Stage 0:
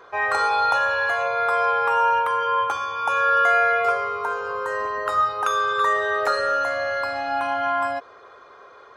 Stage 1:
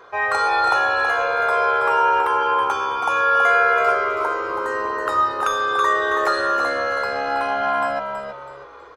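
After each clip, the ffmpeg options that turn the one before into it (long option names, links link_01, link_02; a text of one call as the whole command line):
ffmpeg -i in.wav -filter_complex "[0:a]asplit=5[link_01][link_02][link_03][link_04][link_05];[link_02]adelay=325,afreqshift=-70,volume=-7dB[link_06];[link_03]adelay=650,afreqshift=-140,volume=-16.4dB[link_07];[link_04]adelay=975,afreqshift=-210,volume=-25.7dB[link_08];[link_05]adelay=1300,afreqshift=-280,volume=-35.1dB[link_09];[link_01][link_06][link_07][link_08][link_09]amix=inputs=5:normalize=0,volume=1.5dB" out.wav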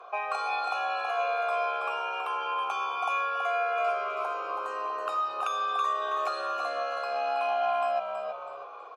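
ffmpeg -i in.wav -filter_complex "[0:a]acrossover=split=240|1900[link_01][link_02][link_03];[link_01]acompressor=threshold=-45dB:ratio=4[link_04];[link_02]acompressor=threshold=-30dB:ratio=4[link_05];[link_03]acompressor=threshold=-30dB:ratio=4[link_06];[link_04][link_05][link_06]amix=inputs=3:normalize=0,asplit=3[link_07][link_08][link_09];[link_07]bandpass=frequency=730:width_type=q:width=8,volume=0dB[link_10];[link_08]bandpass=frequency=1090:width_type=q:width=8,volume=-6dB[link_11];[link_09]bandpass=frequency=2440:width_type=q:width=8,volume=-9dB[link_12];[link_10][link_11][link_12]amix=inputs=3:normalize=0,aemphasis=mode=production:type=75kf,volume=7dB" out.wav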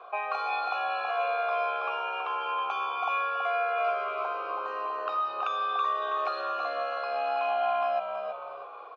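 ffmpeg -i in.wav -af "lowpass=frequency=4400:width=0.5412,lowpass=frequency=4400:width=1.3066" out.wav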